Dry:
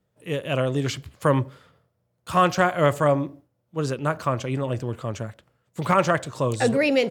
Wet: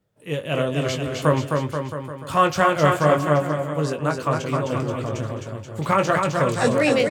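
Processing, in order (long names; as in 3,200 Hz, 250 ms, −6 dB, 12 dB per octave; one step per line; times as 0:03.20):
double-tracking delay 20 ms −7 dB
on a send: bouncing-ball delay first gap 260 ms, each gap 0.85×, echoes 5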